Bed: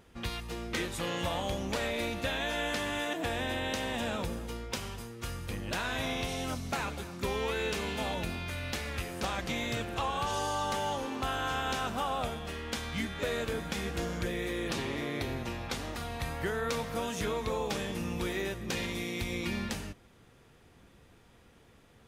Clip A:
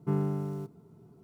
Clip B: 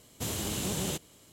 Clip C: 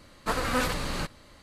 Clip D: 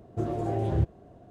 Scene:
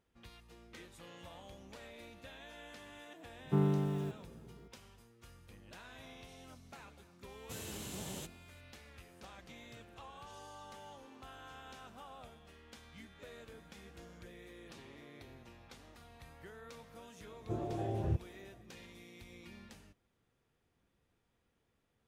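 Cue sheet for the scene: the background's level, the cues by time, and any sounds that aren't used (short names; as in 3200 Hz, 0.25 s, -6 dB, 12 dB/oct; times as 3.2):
bed -19.5 dB
3.45 add A -1 dB
7.29 add B -12 dB
17.32 add D -8.5 dB
not used: C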